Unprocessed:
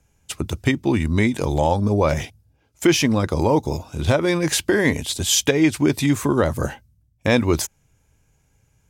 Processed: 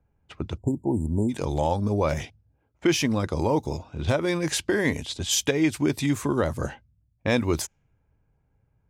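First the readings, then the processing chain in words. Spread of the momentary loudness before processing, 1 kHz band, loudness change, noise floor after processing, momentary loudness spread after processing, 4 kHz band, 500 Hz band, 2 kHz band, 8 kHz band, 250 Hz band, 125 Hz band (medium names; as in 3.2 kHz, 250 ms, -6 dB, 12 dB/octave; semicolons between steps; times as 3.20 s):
10 LU, -5.5 dB, -5.5 dB, -70 dBFS, 10 LU, -6.0 dB, -5.5 dB, -6.0 dB, -6.0 dB, -5.5 dB, -5.5 dB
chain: level-controlled noise filter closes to 1.3 kHz, open at -15.5 dBFS; spectral selection erased 0.58–1.29 s, 990–6900 Hz; trim -5.5 dB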